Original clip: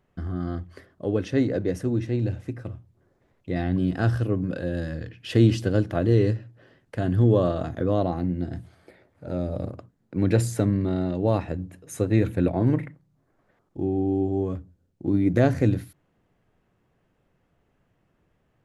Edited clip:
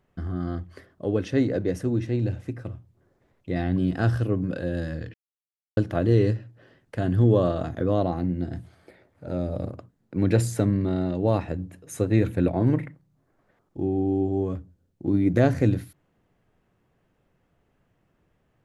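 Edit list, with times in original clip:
5.14–5.77 mute

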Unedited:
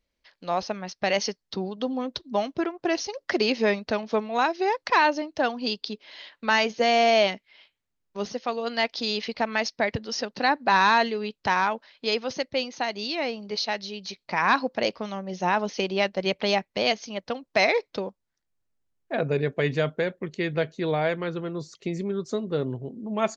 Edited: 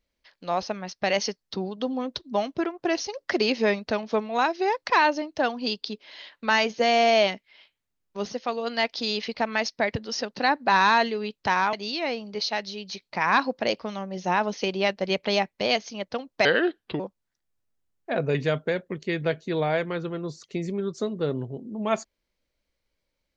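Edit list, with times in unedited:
11.73–12.89 cut
17.61–18.02 speed 75%
19.37–19.66 cut

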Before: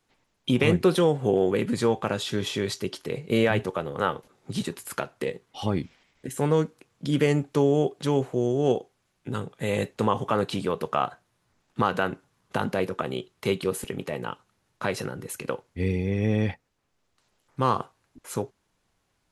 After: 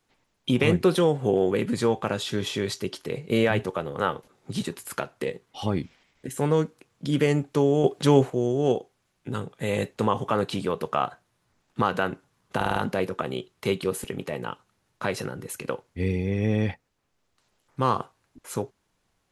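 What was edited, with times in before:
7.84–8.3 gain +6 dB
12.56 stutter 0.05 s, 5 plays

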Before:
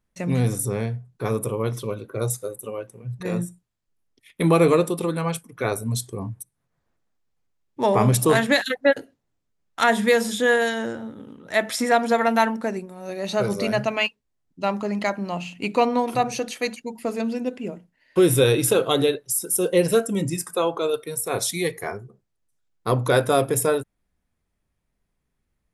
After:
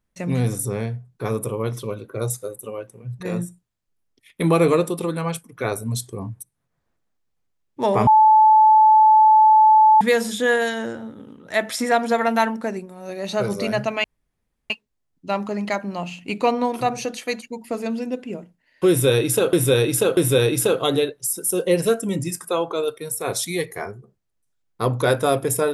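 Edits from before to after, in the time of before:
8.07–10.01 bleep 868 Hz -9 dBFS
14.04 insert room tone 0.66 s
18.23–18.87 loop, 3 plays

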